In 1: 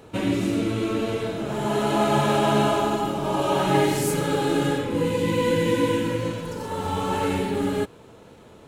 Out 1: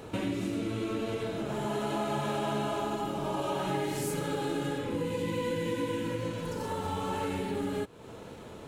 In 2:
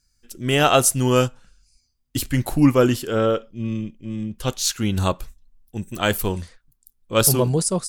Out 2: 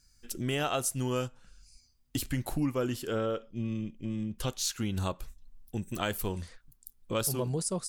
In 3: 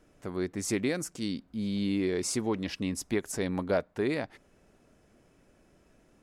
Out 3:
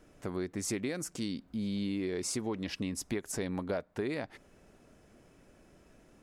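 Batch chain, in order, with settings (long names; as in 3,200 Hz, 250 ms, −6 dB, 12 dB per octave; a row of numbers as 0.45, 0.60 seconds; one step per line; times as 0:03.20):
downward compressor 3 to 1, threshold −36 dBFS
level +2.5 dB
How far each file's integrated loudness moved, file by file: −9.5, −12.5, −4.0 LU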